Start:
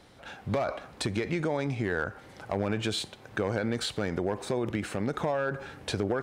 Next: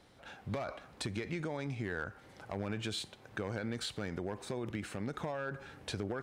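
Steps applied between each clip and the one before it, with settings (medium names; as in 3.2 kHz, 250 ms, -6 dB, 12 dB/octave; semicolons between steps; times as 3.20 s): dynamic bell 570 Hz, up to -4 dB, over -42 dBFS, Q 0.7; trim -6.5 dB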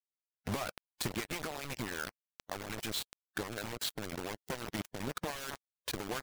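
word length cut 6-bit, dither none; harmonic-percussive split harmonic -16 dB; trim +3 dB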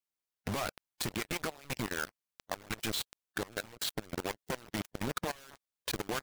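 level held to a coarse grid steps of 20 dB; trim +6 dB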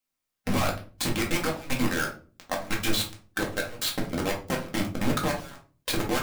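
simulated room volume 250 m³, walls furnished, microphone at 2.1 m; trim +4.5 dB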